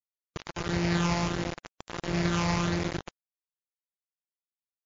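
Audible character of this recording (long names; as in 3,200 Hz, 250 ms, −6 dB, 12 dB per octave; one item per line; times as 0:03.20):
a buzz of ramps at a fixed pitch in blocks of 256 samples
phaser sweep stages 8, 1.5 Hz, lowest notch 430–1,100 Hz
a quantiser's noise floor 6 bits, dither none
MP3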